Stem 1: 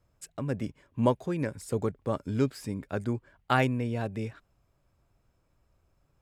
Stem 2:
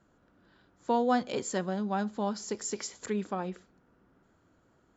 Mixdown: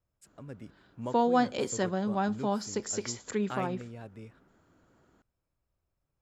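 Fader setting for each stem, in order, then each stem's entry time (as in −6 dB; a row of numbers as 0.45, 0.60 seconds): −13.0, +1.5 decibels; 0.00, 0.25 seconds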